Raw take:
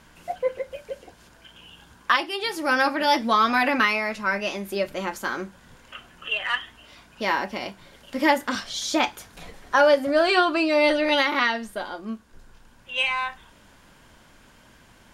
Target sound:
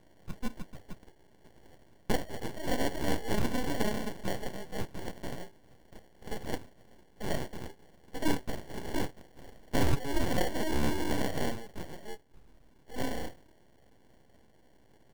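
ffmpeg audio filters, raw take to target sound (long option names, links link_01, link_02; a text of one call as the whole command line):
ffmpeg -i in.wav -af "acrusher=samples=35:mix=1:aa=0.000001,aeval=exprs='abs(val(0))':channel_layout=same,volume=-6.5dB" out.wav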